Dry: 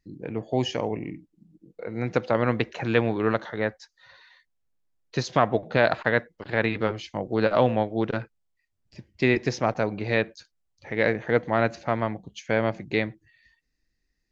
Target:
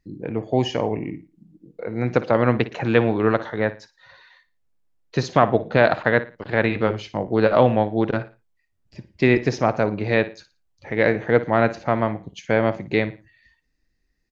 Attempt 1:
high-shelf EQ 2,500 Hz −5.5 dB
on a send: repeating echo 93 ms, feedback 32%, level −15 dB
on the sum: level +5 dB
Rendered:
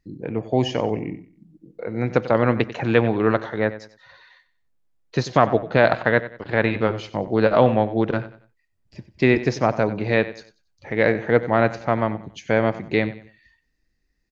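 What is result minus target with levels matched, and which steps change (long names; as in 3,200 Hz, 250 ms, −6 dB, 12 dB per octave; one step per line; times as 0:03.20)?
echo 36 ms late
change: repeating echo 57 ms, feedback 32%, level −15 dB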